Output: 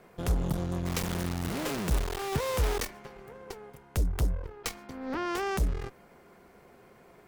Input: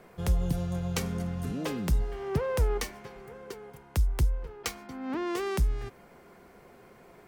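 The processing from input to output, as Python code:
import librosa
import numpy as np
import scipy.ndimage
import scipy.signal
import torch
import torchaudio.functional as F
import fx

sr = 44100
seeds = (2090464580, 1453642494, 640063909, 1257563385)

y = fx.quant_dither(x, sr, seeds[0], bits=6, dither='none', at=(0.85, 2.85), fade=0.02)
y = fx.cheby_harmonics(y, sr, harmonics=(8,), levels_db=(-15,), full_scale_db=-17.0)
y = F.gain(torch.from_numpy(y), -2.0).numpy()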